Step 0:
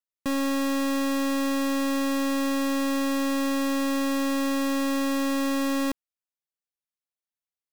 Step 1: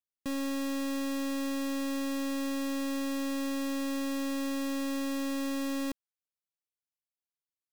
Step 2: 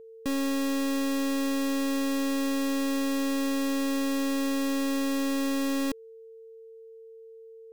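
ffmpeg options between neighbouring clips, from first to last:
-af "equalizer=f=1100:w=0.85:g=-4.5,volume=0.473"
-af "aeval=exprs='val(0)+0.00316*sin(2*PI*450*n/s)':c=same,volume=1.78"

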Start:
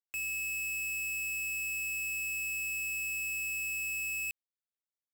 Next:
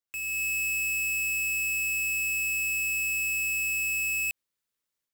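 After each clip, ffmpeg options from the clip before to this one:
-filter_complex "[0:a]dynaudnorm=f=210:g=3:m=2.51,equalizer=f=730:w=7:g=-11,asplit=2[s0][s1];[s1]alimiter=level_in=4.73:limit=0.0631:level=0:latency=1:release=73,volume=0.211,volume=0.841[s2];[s0][s2]amix=inputs=2:normalize=0,volume=0.708"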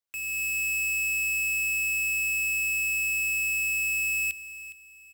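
-af "bandreject=f=60:t=h:w=6,bandreject=f=120:t=h:w=6,bandreject=f=180:t=h:w=6,bandreject=f=240:t=h:w=6,bandreject=f=300:t=h:w=6,bandreject=f=360:t=h:w=6,aecho=1:1:412|824|1236:0.178|0.0587|0.0194,acrusher=bits=8:mode=log:mix=0:aa=0.000001"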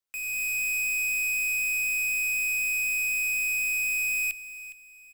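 -af "afreqshift=-86"

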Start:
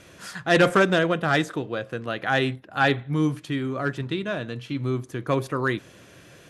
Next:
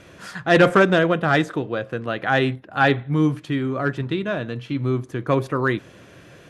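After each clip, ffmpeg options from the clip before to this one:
-af "highshelf=f=4100:g=-9,volume=1.58"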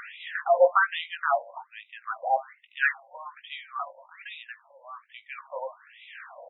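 -filter_complex "[0:a]acompressor=mode=upward:threshold=0.0794:ratio=2.5,asplit=2[s0][s1];[s1]adelay=19,volume=0.398[s2];[s0][s2]amix=inputs=2:normalize=0,afftfilt=real='re*between(b*sr/1024,690*pow(2800/690,0.5+0.5*sin(2*PI*1.2*pts/sr))/1.41,690*pow(2800/690,0.5+0.5*sin(2*PI*1.2*pts/sr))*1.41)':imag='im*between(b*sr/1024,690*pow(2800/690,0.5+0.5*sin(2*PI*1.2*pts/sr))/1.41,690*pow(2800/690,0.5+0.5*sin(2*PI*1.2*pts/sr))*1.41)':win_size=1024:overlap=0.75,volume=0.841"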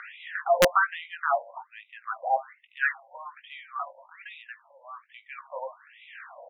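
-filter_complex "[0:a]highpass=430,lowpass=3200,acrossover=split=2500[s0][s1];[s1]acompressor=threshold=0.00501:ratio=4:attack=1:release=60[s2];[s0][s2]amix=inputs=2:normalize=0,aeval=exprs='(mod(3.35*val(0)+1,2)-1)/3.35':c=same"

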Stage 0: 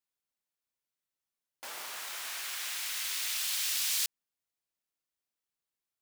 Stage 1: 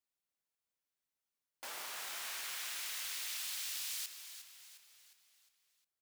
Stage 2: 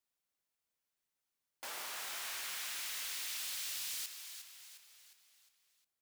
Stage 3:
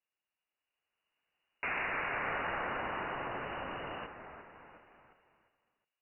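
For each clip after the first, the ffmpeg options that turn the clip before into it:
-filter_complex "[0:a]acompressor=threshold=0.0158:ratio=6,asplit=2[s0][s1];[s1]asplit=5[s2][s3][s4][s5][s6];[s2]adelay=357,afreqshift=-86,volume=0.299[s7];[s3]adelay=714,afreqshift=-172,volume=0.14[s8];[s4]adelay=1071,afreqshift=-258,volume=0.0661[s9];[s5]adelay=1428,afreqshift=-344,volume=0.0309[s10];[s6]adelay=1785,afreqshift=-430,volume=0.0146[s11];[s7][s8][s9][s10][s11]amix=inputs=5:normalize=0[s12];[s0][s12]amix=inputs=2:normalize=0,volume=0.75"
-af "asoftclip=type=tanh:threshold=0.0158,volume=1.26"
-af "equalizer=f=140:t=o:w=1.9:g=11.5,lowpass=f=2600:t=q:w=0.5098,lowpass=f=2600:t=q:w=0.6013,lowpass=f=2600:t=q:w=0.9,lowpass=f=2600:t=q:w=2.563,afreqshift=-3000,dynaudnorm=f=230:g=9:m=3.98"

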